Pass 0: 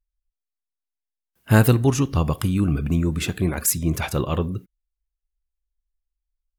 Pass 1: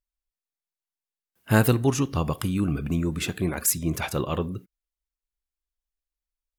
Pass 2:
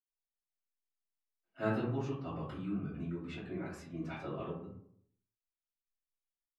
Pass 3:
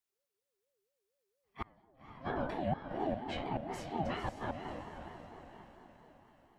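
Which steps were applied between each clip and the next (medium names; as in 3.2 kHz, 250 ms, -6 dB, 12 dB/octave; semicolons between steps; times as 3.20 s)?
bass shelf 89 Hz -10 dB; trim -2 dB
reverberation RT60 0.65 s, pre-delay 77 ms; trim -2 dB
inverted gate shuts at -29 dBFS, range -37 dB; echo that smears into a reverb 530 ms, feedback 46%, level -8 dB; ring modulator with a swept carrier 480 Hz, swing 20%, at 4.3 Hz; trim +7.5 dB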